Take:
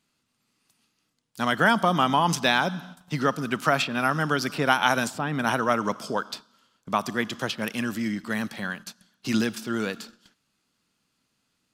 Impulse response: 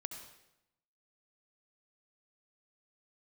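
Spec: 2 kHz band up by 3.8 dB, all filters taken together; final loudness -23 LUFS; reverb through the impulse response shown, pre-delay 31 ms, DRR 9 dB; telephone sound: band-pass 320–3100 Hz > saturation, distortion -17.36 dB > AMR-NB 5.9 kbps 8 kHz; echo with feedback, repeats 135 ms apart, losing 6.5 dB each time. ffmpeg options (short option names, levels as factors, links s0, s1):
-filter_complex "[0:a]equalizer=f=2000:t=o:g=6,aecho=1:1:135|270|405|540|675|810:0.473|0.222|0.105|0.0491|0.0231|0.0109,asplit=2[s0][s1];[1:a]atrim=start_sample=2205,adelay=31[s2];[s1][s2]afir=irnorm=-1:irlink=0,volume=0.447[s3];[s0][s3]amix=inputs=2:normalize=0,highpass=320,lowpass=3100,asoftclip=threshold=0.316,volume=1.5" -ar 8000 -c:a libopencore_amrnb -b:a 5900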